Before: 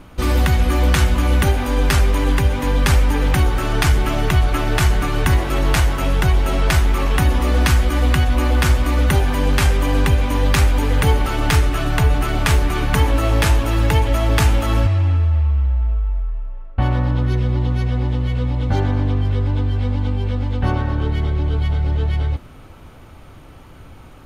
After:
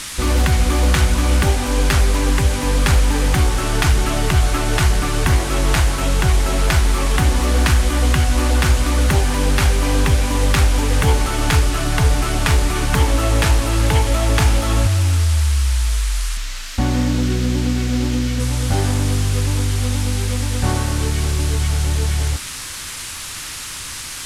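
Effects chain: band noise 1000–11000 Hz -30 dBFS; 16.37–18.4 fifteen-band EQ 100 Hz -7 dB, 250 Hz +9 dB, 1000 Hz -4 dB, 10000 Hz -10 dB; Doppler distortion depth 0.2 ms

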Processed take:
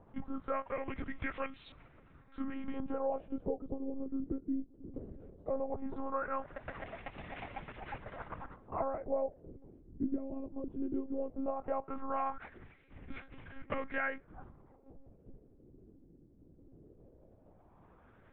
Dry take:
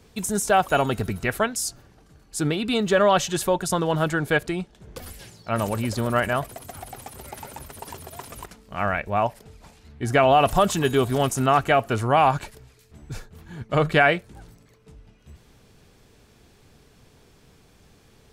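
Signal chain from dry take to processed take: gliding pitch shift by -3.5 st ending unshifted; compressor 16:1, threshold -29 dBFS, peak gain reduction 16 dB; monotone LPC vocoder at 8 kHz 270 Hz; LFO low-pass sine 0.17 Hz 310–2400 Hz; gain -5 dB

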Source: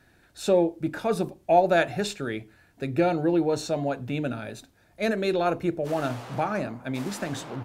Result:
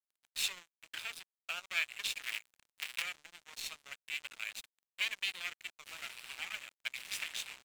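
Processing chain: 2.22–3.02 cycle switcher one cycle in 2, muted; compressor 3:1, threshold -41 dBFS, peak gain reduction 20 dB; half-wave rectifier; resonant high-pass 2500 Hz, resonance Q 3.8; crossover distortion -54 dBFS; gain +11.5 dB

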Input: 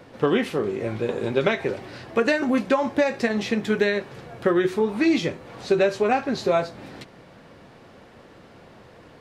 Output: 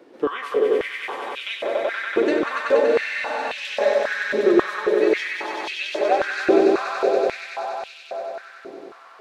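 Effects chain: swelling echo 95 ms, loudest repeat 5, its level -4.5 dB; spectral freeze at 2.89, 0.65 s; stepped high-pass 3.7 Hz 340–2800 Hz; gain -7 dB

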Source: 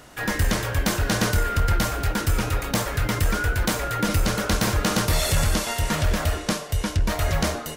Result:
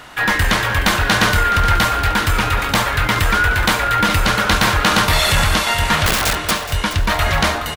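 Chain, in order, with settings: band shelf 1800 Hz +8.5 dB 2.7 oct; 6.06–6.51 wrapped overs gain 15 dB; on a send: feedback echo 0.422 s, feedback 41%, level -13 dB; on the sum: gain +3.5 dB

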